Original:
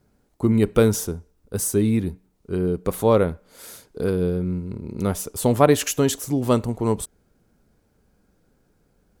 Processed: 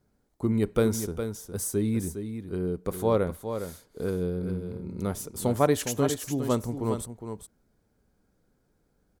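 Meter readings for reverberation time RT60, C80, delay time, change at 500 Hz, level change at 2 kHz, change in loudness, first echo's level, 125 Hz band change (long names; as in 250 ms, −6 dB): no reverb audible, no reverb audible, 410 ms, −6.5 dB, −7.0 dB, −7.0 dB, −8.5 dB, −6.5 dB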